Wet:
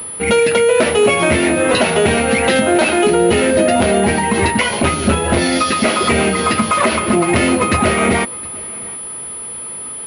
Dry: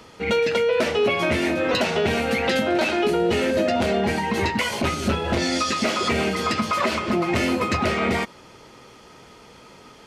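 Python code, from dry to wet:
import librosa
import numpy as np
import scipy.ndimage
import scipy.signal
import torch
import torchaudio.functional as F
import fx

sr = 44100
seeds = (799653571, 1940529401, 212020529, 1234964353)

y = x + 10.0 ** (-23.0 / 20.0) * np.pad(x, (int(714 * sr / 1000.0), 0))[:len(x)]
y = fx.pwm(y, sr, carrier_hz=10000.0)
y = F.gain(torch.from_numpy(y), 8.0).numpy()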